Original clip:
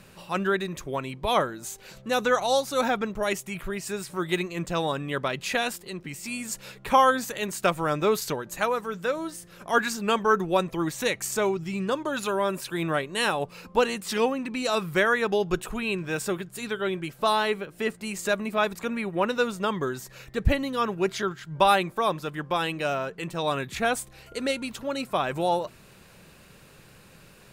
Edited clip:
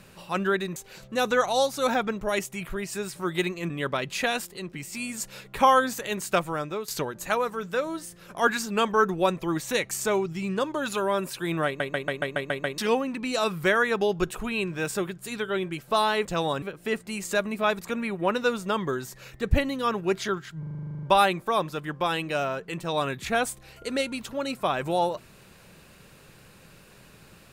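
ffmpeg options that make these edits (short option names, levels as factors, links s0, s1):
-filter_complex "[0:a]asplit=25[s0][s1][s2][s3][s4][s5][s6][s7][s8][s9][s10][s11][s12][s13][s14][s15][s16][s17][s18][s19][s20][s21][s22][s23][s24];[s0]atrim=end=0.762[s25];[s1]atrim=start=1.698:end=4.642[s26];[s2]atrim=start=5.008:end=8.19,asetpts=PTS-STARTPTS,afade=t=out:st=2.622:d=0.56:silence=0.177828[s27];[s3]atrim=start=8.19:end=13.112,asetpts=PTS-STARTPTS,afade=t=in:d=0.004:c=hsin:silence=0.177828[s28];[s4]atrim=start=12.968:end=13.112[s29];[s5]atrim=start=12.968:end=13.112[s30];[s6]atrim=start=12.968:end=13.112[s31];[s7]atrim=start=12.968:end=13.112[s32];[s8]atrim=start=12.968:end=13.112[s33];[s9]atrim=start=12.968:end=13.112[s34];[s10]atrim=start=12.968:end=13.112[s35];[s11]atrim=start=14.088:end=17.562[s36];[s12]atrim=start=4.638:end=5.012[s37];[s13]atrim=start=17.558:end=21.572[s38];[s14]atrim=start=21.528:end=21.572[s39];[s15]atrim=start=21.528:end=21.572[s40];[s16]atrim=start=21.528:end=21.572[s41];[s17]atrim=start=21.528:end=21.572[s42];[s18]atrim=start=21.528:end=21.572[s43];[s19]atrim=start=21.528:end=21.572[s44];[s20]atrim=start=21.528:end=21.572[s45];[s21]atrim=start=21.528:end=21.572[s46];[s22]atrim=start=21.528:end=21.572[s47];[s23]atrim=start=21.528:end=21.572[s48];[s24]atrim=start=21.528[s49];[s25][s26]acrossfade=d=0.004:c1=hsin:c2=hsin[s50];[s27][s28]concat=n=2:v=0:a=1[s51];[s50][s51]acrossfade=d=0.004:c1=hsin:c2=hsin[s52];[s52][s29]acrossfade=d=0.004:c1=hsin:c2=hsin[s53];[s53][s30]acrossfade=d=0.004:c1=hsin:c2=hsin[s54];[s54][s31]acrossfade=d=0.004:c1=hsin:c2=hsin[s55];[s55][s32]acrossfade=d=0.004:c1=hsin:c2=hsin[s56];[s56][s33]acrossfade=d=0.004:c1=hsin:c2=hsin[s57];[s57][s34]acrossfade=d=0.004:c1=hsin:c2=hsin[s58];[s58][s35]acrossfade=d=0.004:c1=hsin:c2=hsin[s59];[s59][s36]acrossfade=d=0.004:c1=hsin:c2=hsin[s60];[s60][s37]acrossfade=d=0.004:c1=hsin:c2=hsin[s61];[s61][s38]acrossfade=d=0.004:c1=hsin:c2=hsin[s62];[s62][s39]acrossfade=d=0.004:c1=hsin:c2=hsin[s63];[s63][s40]acrossfade=d=0.004:c1=hsin:c2=hsin[s64];[s64][s41]acrossfade=d=0.004:c1=hsin:c2=hsin[s65];[s65][s42]acrossfade=d=0.004:c1=hsin:c2=hsin[s66];[s66][s43]acrossfade=d=0.004:c1=hsin:c2=hsin[s67];[s67][s44]acrossfade=d=0.004:c1=hsin:c2=hsin[s68];[s68][s45]acrossfade=d=0.004:c1=hsin:c2=hsin[s69];[s69][s46]acrossfade=d=0.004:c1=hsin:c2=hsin[s70];[s70][s47]acrossfade=d=0.004:c1=hsin:c2=hsin[s71];[s71][s48]acrossfade=d=0.004:c1=hsin:c2=hsin[s72];[s72][s49]acrossfade=d=0.004:c1=hsin:c2=hsin"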